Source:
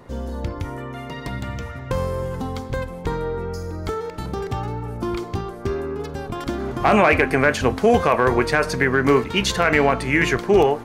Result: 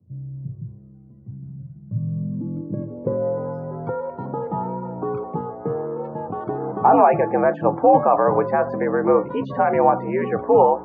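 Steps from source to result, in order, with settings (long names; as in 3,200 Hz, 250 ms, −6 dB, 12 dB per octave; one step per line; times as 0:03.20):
frequency shifter +70 Hz
spectral peaks only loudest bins 64
low-pass filter sweep 100 Hz → 860 Hz, 0:01.81–0:03.50
level −2.5 dB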